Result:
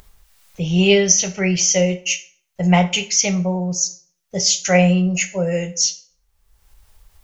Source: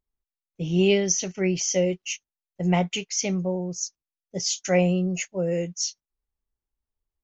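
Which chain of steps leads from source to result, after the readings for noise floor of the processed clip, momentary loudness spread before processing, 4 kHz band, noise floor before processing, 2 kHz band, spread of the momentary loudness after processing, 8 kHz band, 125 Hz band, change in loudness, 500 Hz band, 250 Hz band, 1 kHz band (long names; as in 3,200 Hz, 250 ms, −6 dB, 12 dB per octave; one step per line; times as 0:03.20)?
−67 dBFS, 11 LU, +10.0 dB, below −85 dBFS, +10.0 dB, 9 LU, can't be measured, +7.5 dB, +8.0 dB, +5.0 dB, +6.5 dB, +9.0 dB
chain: parametric band 300 Hz −15 dB 0.97 octaves
in parallel at 0 dB: upward compression, threshold −28 dBFS
on the sum: dense smooth reverb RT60 0.5 s, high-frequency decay 0.75×, DRR 8 dB
level +3.5 dB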